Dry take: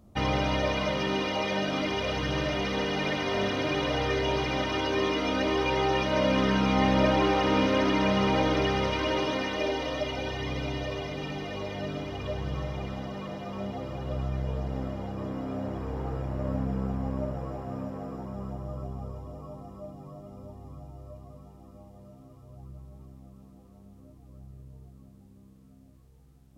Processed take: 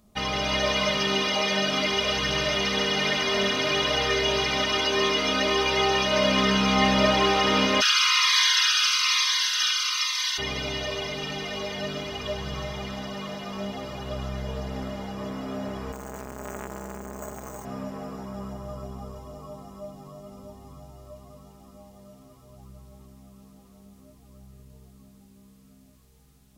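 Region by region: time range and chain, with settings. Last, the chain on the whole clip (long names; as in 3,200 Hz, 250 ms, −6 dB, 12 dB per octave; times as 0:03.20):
0:07.80–0:10.37: ceiling on every frequency bin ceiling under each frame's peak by 23 dB + Chebyshev high-pass filter 990 Hz, order 6 + phaser whose notches keep moving one way falling 1.1 Hz
0:15.92–0:17.65: bad sample-rate conversion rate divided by 6×, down none, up hold + saturating transformer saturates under 850 Hz
whole clip: tilt shelving filter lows −6 dB, about 1,400 Hz; comb filter 4.8 ms, depth 51%; automatic gain control gain up to 4.5 dB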